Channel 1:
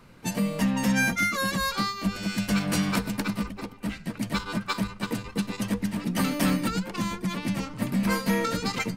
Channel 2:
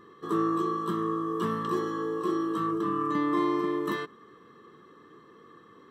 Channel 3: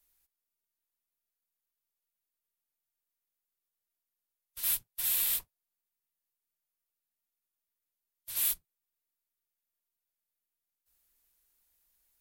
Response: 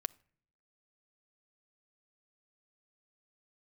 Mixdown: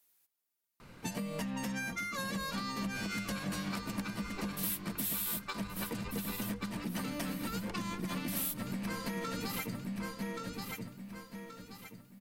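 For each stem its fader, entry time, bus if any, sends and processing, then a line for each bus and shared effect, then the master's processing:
-0.5 dB, 0.80 s, bus A, no send, echo send -13.5 dB, dry
-19.5 dB, 1.35 s, bus A, no send, no echo send, dry
+2.5 dB, 0.00 s, no bus, no send, echo send -14.5 dB, HPF 160 Hz
bus A: 0.0 dB, low shelf 350 Hz -4 dB; compressor, threshold -33 dBFS, peak gain reduction 11.5 dB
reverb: off
echo: feedback echo 1.127 s, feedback 36%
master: low shelf 160 Hz +3.5 dB; compressor 4:1, threshold -34 dBFS, peak gain reduction 10.5 dB

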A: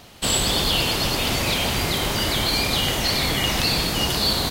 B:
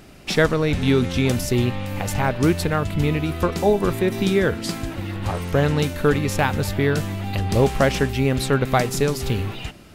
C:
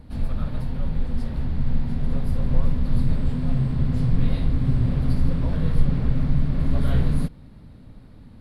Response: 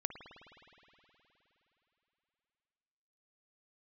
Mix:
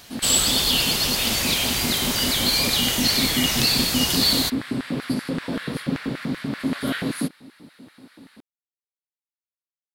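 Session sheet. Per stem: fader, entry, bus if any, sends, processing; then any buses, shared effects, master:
-6.0 dB, 0.00 s, no send, dry
off
+2.5 dB, 0.00 s, no send, LFO high-pass square 5.2 Hz 280–1600 Hz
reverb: off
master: high shelf 2600 Hz +11.5 dB

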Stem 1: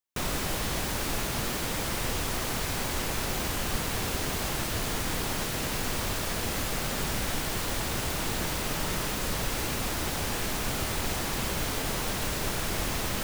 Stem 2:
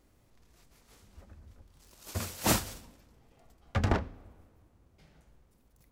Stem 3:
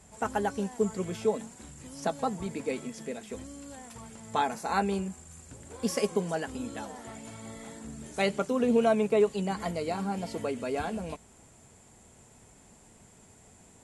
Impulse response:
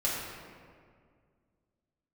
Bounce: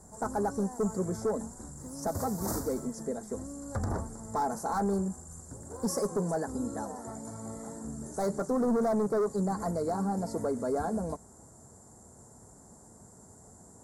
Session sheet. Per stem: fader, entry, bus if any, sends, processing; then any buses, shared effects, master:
off
+1.0 dB, 0.00 s, no send, dry
+3.0 dB, 0.00 s, no send, HPF 46 Hz; hard clip -26 dBFS, distortion -9 dB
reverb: off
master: Butterworth band-stop 2800 Hz, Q 0.62; limiter -23.5 dBFS, peak gain reduction 10 dB

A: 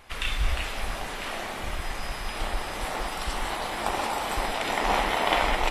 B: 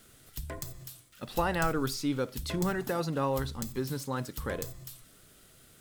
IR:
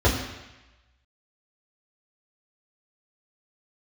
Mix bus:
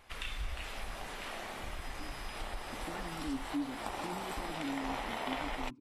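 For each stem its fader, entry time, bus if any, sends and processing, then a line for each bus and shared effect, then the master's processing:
-8.0 dB, 0.00 s, no send, dry
-1.0 dB, 1.50 s, no send, tilt -3 dB/oct; vowel sweep i-u 0.56 Hz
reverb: off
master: compressor 2:1, threshold -38 dBFS, peak gain reduction 8 dB

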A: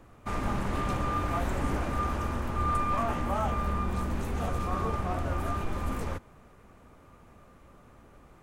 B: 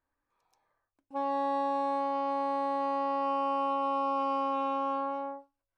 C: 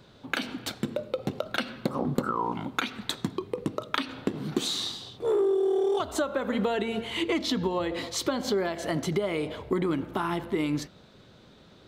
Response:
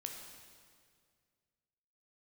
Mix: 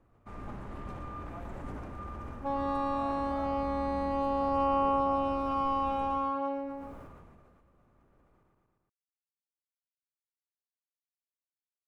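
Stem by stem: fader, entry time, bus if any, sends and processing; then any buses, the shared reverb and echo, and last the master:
-12.5 dB, 0.00 s, no send, echo send -6.5 dB, high shelf 2500 Hz -11.5 dB
-2.0 dB, 1.30 s, no send, echo send -7.5 dB, bell 350 Hz +3.5 dB 1.7 oct
off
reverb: off
echo: feedback echo 0.116 s, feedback 25%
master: sustainer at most 28 dB/s

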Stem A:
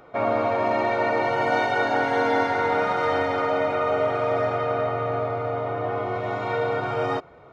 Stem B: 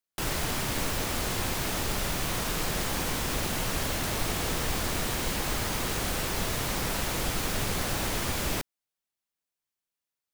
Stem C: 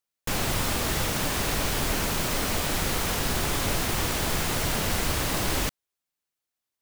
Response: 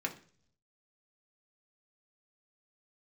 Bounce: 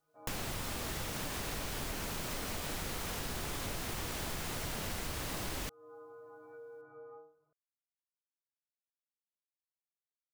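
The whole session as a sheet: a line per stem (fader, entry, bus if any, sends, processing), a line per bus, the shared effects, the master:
-16.5 dB, 0.00 s, no send, steep low-pass 1600 Hz 36 dB/oct; metallic resonator 150 Hz, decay 0.47 s, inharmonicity 0.008; compressor, threshold -32 dBFS, peak gain reduction 7 dB
off
-0.5 dB, 0.00 s, no send, dry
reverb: off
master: compressor 4:1, threshold -38 dBFS, peak gain reduction 13.5 dB

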